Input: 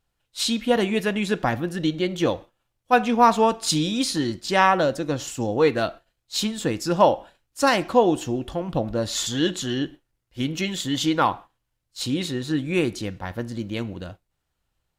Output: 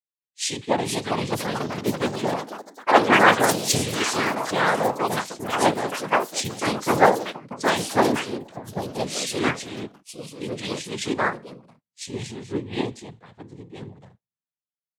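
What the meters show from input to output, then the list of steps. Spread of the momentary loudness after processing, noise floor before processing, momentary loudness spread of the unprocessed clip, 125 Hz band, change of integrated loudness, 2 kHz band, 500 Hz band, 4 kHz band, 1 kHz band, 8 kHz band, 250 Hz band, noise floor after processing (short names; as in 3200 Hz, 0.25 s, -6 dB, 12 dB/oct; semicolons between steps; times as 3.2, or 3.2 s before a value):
17 LU, -78 dBFS, 12 LU, -2.5 dB, 0.0 dB, +4.0 dB, -1.5 dB, -1.0 dB, +0.5 dB, +2.0 dB, -3.5 dB, under -85 dBFS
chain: noise vocoder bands 6; echoes that change speed 0.554 s, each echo +4 st, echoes 3; three-band expander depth 70%; gain -3.5 dB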